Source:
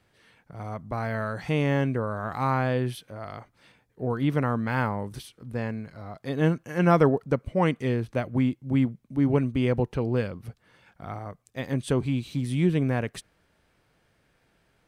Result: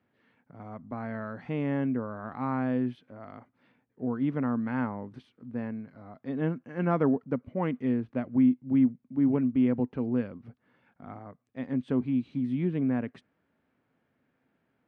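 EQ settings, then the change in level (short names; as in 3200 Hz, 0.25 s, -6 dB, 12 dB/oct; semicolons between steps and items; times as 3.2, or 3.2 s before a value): HPF 110 Hz; LPF 2200 Hz 12 dB/oct; bell 250 Hz +12 dB 0.36 oct; -7.5 dB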